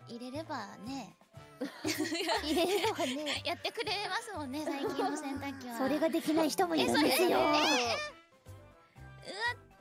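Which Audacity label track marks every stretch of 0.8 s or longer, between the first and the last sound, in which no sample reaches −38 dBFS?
8.080000	9.260000	silence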